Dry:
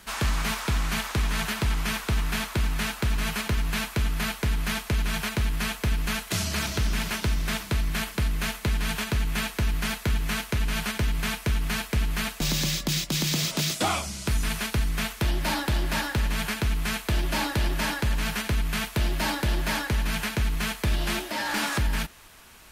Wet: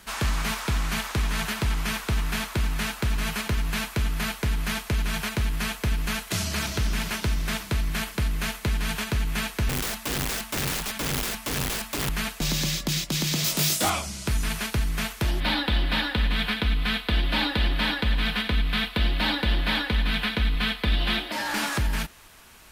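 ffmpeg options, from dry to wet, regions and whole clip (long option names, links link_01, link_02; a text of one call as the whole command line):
ffmpeg -i in.wav -filter_complex "[0:a]asettb=1/sr,asplit=3[link_01][link_02][link_03];[link_01]atrim=end=9.694[link_04];[link_02]atrim=start=9.69:end=12.09,asetpts=PTS-STARTPTS,afade=type=in:duration=0.004:curve=qsin,afade=type=out:start_time=2.396:duration=0.004:curve=qsin,equalizer=frequency=430:width_type=o:width=0.23:gain=-13.5,bandreject=frequency=110.6:width_type=h:width=4,bandreject=frequency=221.2:width_type=h:width=4,bandreject=frequency=331.8:width_type=h:width=4,bandreject=frequency=442.4:width_type=h:width=4,bandreject=frequency=553:width_type=h:width=4,bandreject=frequency=663.6:width_type=h:width=4,bandreject=frequency=774.2:width_type=h:width=4,bandreject=frequency=884.8:width_type=h:width=4,bandreject=frequency=995.4:width_type=h:width=4,bandreject=frequency=1106:width_type=h:width=4,bandreject=frequency=1216.6:width_type=h:width=4,bandreject=frequency=1327.2:width_type=h:width=4,aeval=exprs='(mod(15*val(0)+1,2)-1)/15':channel_layout=same[link_05];[link_03]atrim=start=12.086[link_06];[link_04][link_05]acrossfade=duration=0.004:curve1=hsin:curve2=qsin[link_07];[link_07][link_06]acrossfade=duration=0.004:curve1=qsin:curve2=hsin,asettb=1/sr,asplit=3[link_08][link_09][link_10];[link_08]atrim=end=13.444[link_11];[link_09]atrim=start=13.44:end=13.9,asetpts=PTS-STARTPTS,afade=type=in:duration=0.004:curve=qsin,afade=type=out:start_time=0.456:duration=0.004:curve=qsin,highshelf=frequency=8500:gain=12,aeval=exprs='0.112*(abs(mod(val(0)/0.112+3,4)-2)-1)':channel_layout=same,asplit=2[link_12][link_13];[link_13]adelay=21,volume=-3dB[link_14];[link_12][link_14]amix=inputs=2:normalize=0,atrim=end_sample=20286[link_15];[link_10]atrim=start=13.896[link_16];[link_11][link_15]acrossfade=duration=0.004:curve1=hsin:curve2=qsin[link_17];[link_17][link_16]acrossfade=duration=0.004:curve1=qsin:curve2=hsin,asettb=1/sr,asplit=3[link_18][link_19][link_20];[link_18]atrim=end=15.404[link_21];[link_19]atrim=start=15.4:end=21.32,asetpts=PTS-STARTPTS,afade=type=in:duration=0.004:curve=qsin,afade=type=out:start_time=5.916:duration=0.004:curve=qsin,highshelf=frequency=4900:width_type=q:width=3:gain=-10,aecho=1:1:4:0.54,atrim=end_sample=261072[link_22];[link_20]atrim=start=21.316[link_23];[link_21][link_22]acrossfade=duration=0.004:curve1=hsin:curve2=qsin[link_24];[link_24][link_23]acrossfade=duration=0.004:curve1=qsin:curve2=hsin" out.wav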